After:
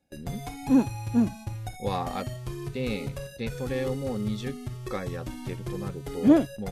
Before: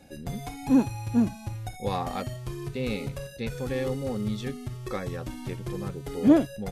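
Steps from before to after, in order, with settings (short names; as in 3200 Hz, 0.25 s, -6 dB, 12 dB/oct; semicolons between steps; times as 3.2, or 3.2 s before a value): gate with hold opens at -34 dBFS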